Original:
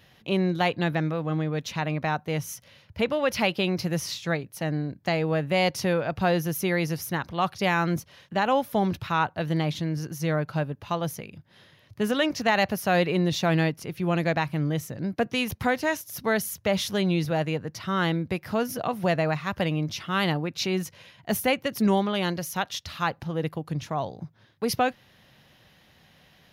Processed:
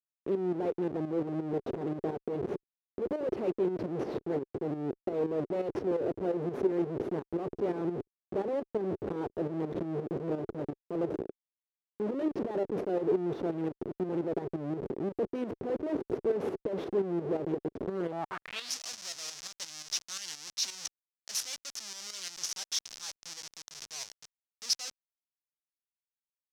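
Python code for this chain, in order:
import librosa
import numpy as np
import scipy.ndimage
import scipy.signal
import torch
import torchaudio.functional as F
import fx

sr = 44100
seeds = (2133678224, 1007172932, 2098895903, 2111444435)

y = fx.schmitt(x, sr, flips_db=-32.5)
y = fx.tremolo_shape(y, sr, shape='saw_up', hz=5.7, depth_pct=65)
y = fx.filter_sweep_bandpass(y, sr, from_hz=390.0, to_hz=5700.0, start_s=18.03, end_s=18.73, q=3.4)
y = y * librosa.db_to_amplitude(8.0)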